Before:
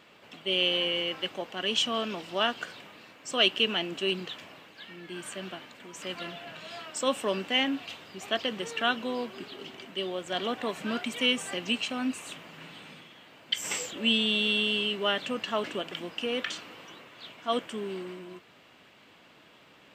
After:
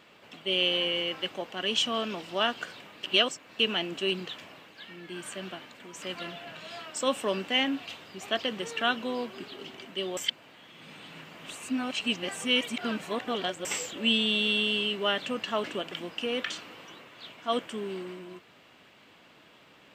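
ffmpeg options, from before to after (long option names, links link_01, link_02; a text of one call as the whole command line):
ffmpeg -i in.wav -filter_complex "[0:a]asplit=5[link_01][link_02][link_03][link_04][link_05];[link_01]atrim=end=3.032[link_06];[link_02]atrim=start=3.028:end=3.592,asetpts=PTS-STARTPTS,areverse[link_07];[link_03]atrim=start=3.588:end=10.172[link_08];[link_04]atrim=start=10.168:end=13.652,asetpts=PTS-STARTPTS,areverse[link_09];[link_05]atrim=start=13.648[link_10];[link_06][link_07]acrossfade=duration=0.004:curve1=hsin:curve2=hsin[link_11];[link_11][link_08]acrossfade=duration=0.004:curve1=hsin:curve2=hsin[link_12];[link_12][link_09]acrossfade=duration=0.004:curve1=hsin:curve2=hsin[link_13];[link_13][link_10]acrossfade=duration=0.004:curve1=hsin:curve2=hsin" out.wav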